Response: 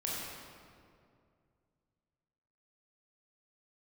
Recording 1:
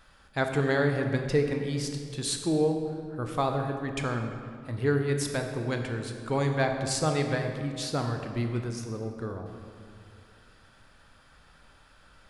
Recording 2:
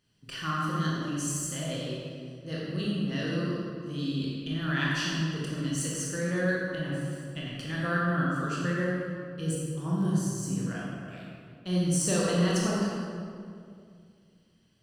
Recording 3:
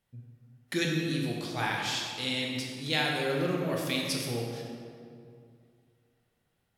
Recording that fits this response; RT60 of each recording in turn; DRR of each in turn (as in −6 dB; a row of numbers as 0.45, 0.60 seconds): 2; 2.3, 2.3, 2.3 seconds; 4.0, −5.5, −1.0 decibels